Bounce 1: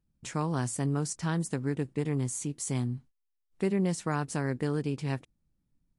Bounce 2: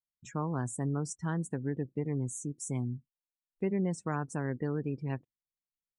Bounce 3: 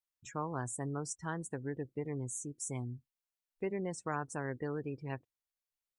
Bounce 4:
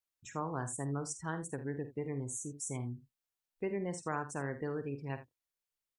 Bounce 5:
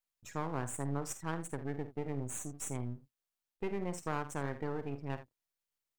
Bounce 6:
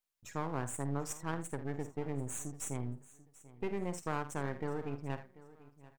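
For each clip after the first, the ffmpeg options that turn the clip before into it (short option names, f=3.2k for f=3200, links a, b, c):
-af "afftdn=nr=32:nf=-39,volume=-3dB"
-af "equalizer=f=190:t=o:w=1.4:g=-10"
-af "aecho=1:1:50|78:0.266|0.178"
-af "aeval=exprs='if(lt(val(0),0),0.251*val(0),val(0))':c=same,volume=2.5dB"
-af "aecho=1:1:739|1478:0.112|0.0281"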